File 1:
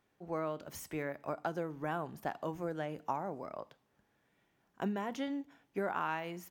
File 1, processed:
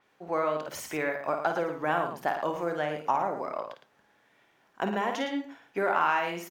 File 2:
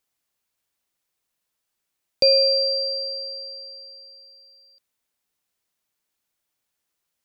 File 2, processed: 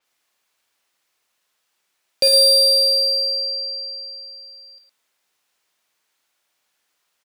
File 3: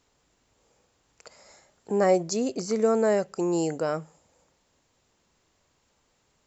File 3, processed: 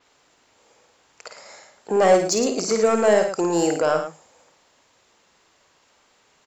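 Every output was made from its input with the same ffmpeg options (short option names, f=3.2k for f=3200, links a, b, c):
-filter_complex "[0:a]asplit=2[a][b];[b]highpass=f=720:p=1,volume=17dB,asoftclip=type=tanh:threshold=-7dB[c];[a][c]amix=inputs=2:normalize=0,lowpass=f=4.3k:p=1,volume=-6dB,aecho=1:1:52.48|110.8:0.447|0.355,adynamicequalizer=threshold=0.02:dfrequency=6100:dqfactor=0.7:tfrequency=6100:tqfactor=0.7:attack=5:release=100:ratio=0.375:range=2.5:mode=boostabove:tftype=highshelf"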